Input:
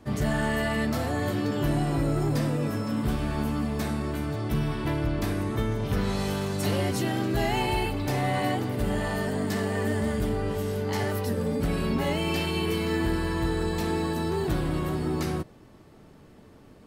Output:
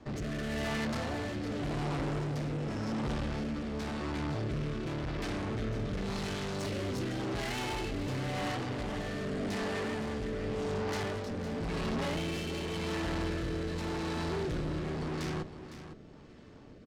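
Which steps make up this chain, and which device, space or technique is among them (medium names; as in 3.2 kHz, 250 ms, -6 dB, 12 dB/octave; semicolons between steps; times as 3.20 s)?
low-pass 6.8 kHz 24 dB/octave; de-hum 95.6 Hz, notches 2; overdriven rotary cabinet (valve stage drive 37 dB, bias 0.75; rotary cabinet horn 0.9 Hz); delay 508 ms -11.5 dB; trim +5.5 dB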